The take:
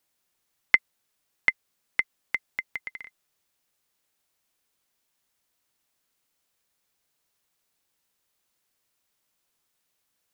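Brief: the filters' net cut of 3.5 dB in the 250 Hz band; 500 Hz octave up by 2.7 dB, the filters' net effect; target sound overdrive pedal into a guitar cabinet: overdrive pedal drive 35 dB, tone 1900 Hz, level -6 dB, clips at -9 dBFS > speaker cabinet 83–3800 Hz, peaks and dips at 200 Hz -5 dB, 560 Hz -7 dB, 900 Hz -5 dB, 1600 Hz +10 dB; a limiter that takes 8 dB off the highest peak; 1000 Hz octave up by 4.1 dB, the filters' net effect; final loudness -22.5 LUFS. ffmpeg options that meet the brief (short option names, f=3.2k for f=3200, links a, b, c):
-filter_complex "[0:a]equalizer=f=250:t=o:g=-7,equalizer=f=500:t=o:g=8.5,equalizer=f=1k:t=o:g=3.5,alimiter=limit=-9dB:level=0:latency=1,asplit=2[a][b];[b]highpass=f=720:p=1,volume=35dB,asoftclip=type=tanh:threshold=-9dB[c];[a][c]amix=inputs=2:normalize=0,lowpass=f=1.9k:p=1,volume=-6dB,highpass=83,equalizer=f=200:t=q:w=4:g=-5,equalizer=f=560:t=q:w=4:g=-7,equalizer=f=900:t=q:w=4:g=-5,equalizer=f=1.6k:t=q:w=4:g=10,lowpass=f=3.8k:w=0.5412,lowpass=f=3.8k:w=1.3066,volume=2dB"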